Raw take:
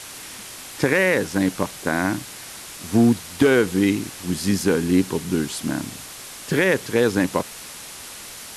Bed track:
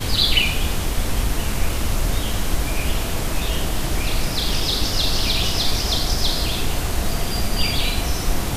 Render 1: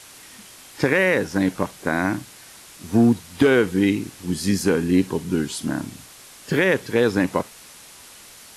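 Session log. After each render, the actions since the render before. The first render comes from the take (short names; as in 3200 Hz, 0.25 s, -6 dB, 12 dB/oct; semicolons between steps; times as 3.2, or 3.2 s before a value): noise print and reduce 7 dB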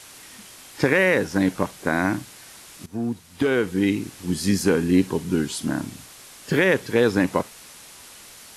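2.86–4.19 fade in, from -15.5 dB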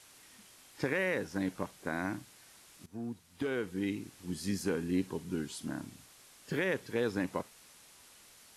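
gain -13.5 dB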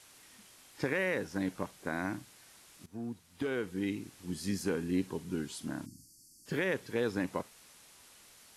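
5.86–6.46 spectral delete 350–4400 Hz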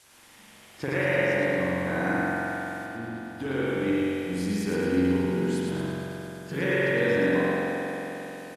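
feedback echo 0.111 s, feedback 54%, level -4 dB; spring tank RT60 3.7 s, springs 44 ms, chirp 75 ms, DRR -7.5 dB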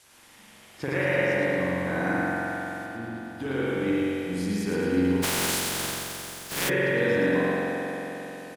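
5.22–6.68 spectral contrast lowered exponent 0.26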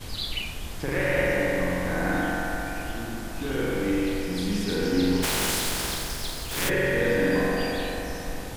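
add bed track -14 dB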